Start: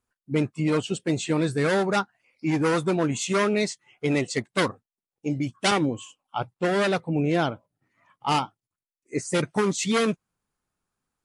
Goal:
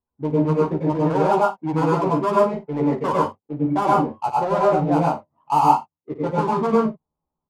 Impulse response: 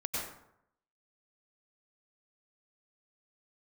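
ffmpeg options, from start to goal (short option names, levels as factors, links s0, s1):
-filter_complex "[0:a]atempo=1.5,lowpass=f=940:t=q:w=4.9,adynamicsmooth=sensitivity=4.5:basefreq=720,aecho=1:1:13|54:0.631|0.251[s0];[1:a]atrim=start_sample=2205,afade=t=out:st=0.2:d=0.01,atrim=end_sample=9261[s1];[s0][s1]afir=irnorm=-1:irlink=0,volume=0.668"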